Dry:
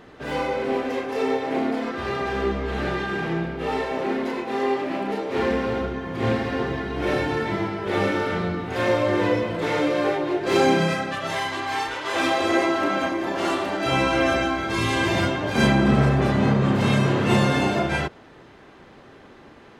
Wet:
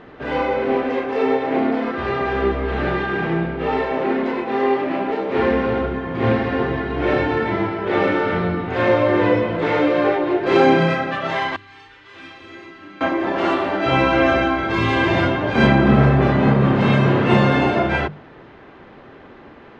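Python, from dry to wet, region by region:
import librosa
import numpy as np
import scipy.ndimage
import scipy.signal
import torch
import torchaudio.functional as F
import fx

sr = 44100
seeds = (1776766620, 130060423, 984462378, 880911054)

y = fx.chain(x, sr, fx.tone_stack(knobs='6-0-2'),
    fx.room_flutter(wall_m=6.9, rt60_s=0.35), at=(11.56, 13.01))
y = scipy.signal.sosfilt(scipy.signal.butter(2, 2900.0, 'lowpass', fs=sr, output='sos'), y)
y = fx.hum_notches(y, sr, base_hz=50, count=4)
y = y * librosa.db_to_amplitude(5.0)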